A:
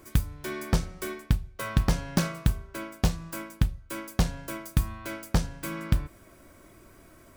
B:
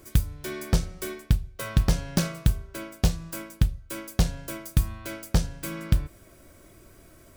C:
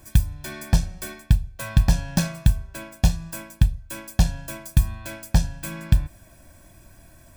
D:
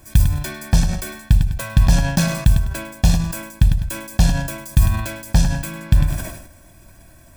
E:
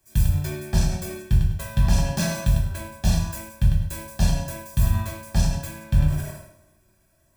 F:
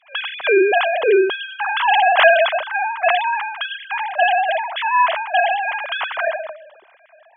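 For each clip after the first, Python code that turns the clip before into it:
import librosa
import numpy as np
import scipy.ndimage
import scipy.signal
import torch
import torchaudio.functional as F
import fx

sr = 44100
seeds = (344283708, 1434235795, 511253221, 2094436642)

y1 = fx.graphic_eq(x, sr, hz=(250, 1000, 2000), db=(-4, -6, -3))
y1 = F.gain(torch.from_numpy(y1), 3.0).numpy()
y2 = y1 + 0.76 * np.pad(y1, (int(1.2 * sr / 1000.0), 0))[:len(y1)]
y3 = fx.echo_feedback(y2, sr, ms=101, feedback_pct=18, wet_db=-15.0)
y3 = fx.sustainer(y3, sr, db_per_s=64.0)
y3 = F.gain(torch.from_numpy(y3), 2.5).numpy()
y4 = fx.rev_fdn(y3, sr, rt60_s=0.85, lf_ratio=0.9, hf_ratio=0.75, size_ms=15.0, drr_db=-3.0)
y4 = fx.band_widen(y4, sr, depth_pct=40)
y4 = F.gain(torch.from_numpy(y4), -9.0).numpy()
y5 = fx.sine_speech(y4, sr)
y5 = F.gain(torch.from_numpy(y5), 3.5).numpy()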